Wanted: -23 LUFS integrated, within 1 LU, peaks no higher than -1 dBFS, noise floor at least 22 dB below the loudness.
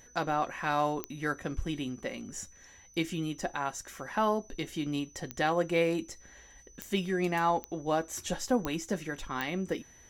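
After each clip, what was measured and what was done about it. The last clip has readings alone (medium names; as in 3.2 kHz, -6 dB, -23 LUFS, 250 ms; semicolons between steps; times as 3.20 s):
clicks found 6; steady tone 6 kHz; tone level -56 dBFS; loudness -32.5 LUFS; peak level -15.5 dBFS; loudness target -23.0 LUFS
-> de-click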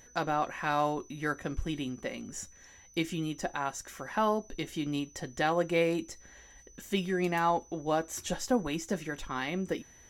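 clicks found 0; steady tone 6 kHz; tone level -56 dBFS
-> band-stop 6 kHz, Q 30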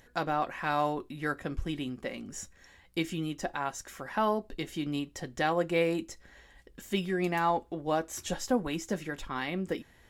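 steady tone not found; loudness -32.5 LUFS; peak level -15.5 dBFS; loudness target -23.0 LUFS
-> trim +9.5 dB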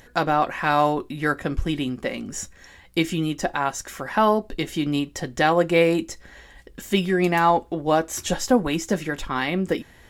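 loudness -23.0 LUFS; peak level -6.0 dBFS; noise floor -51 dBFS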